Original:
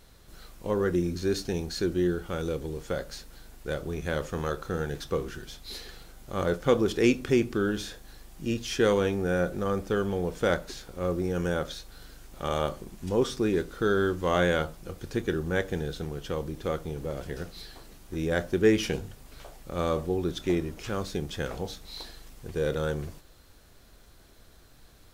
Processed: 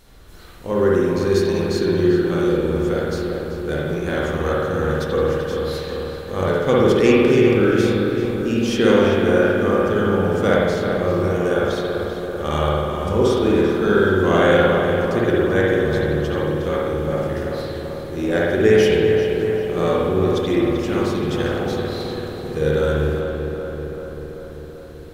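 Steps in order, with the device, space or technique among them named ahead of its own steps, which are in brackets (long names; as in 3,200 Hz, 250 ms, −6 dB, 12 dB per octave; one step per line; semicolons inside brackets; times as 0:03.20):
dub delay into a spring reverb (feedback echo with a low-pass in the loop 388 ms, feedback 69%, low-pass 2,600 Hz, level −5.5 dB; spring reverb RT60 1.4 s, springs 53 ms, chirp 35 ms, DRR −4.5 dB)
level +3.5 dB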